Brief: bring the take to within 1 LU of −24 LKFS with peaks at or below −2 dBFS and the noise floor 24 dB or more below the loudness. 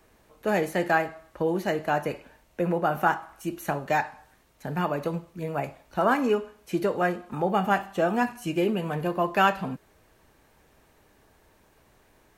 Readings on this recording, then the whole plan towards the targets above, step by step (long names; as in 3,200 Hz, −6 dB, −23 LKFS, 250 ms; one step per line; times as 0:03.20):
integrated loudness −27.0 LKFS; sample peak −8.0 dBFS; target loudness −24.0 LKFS
→ level +3 dB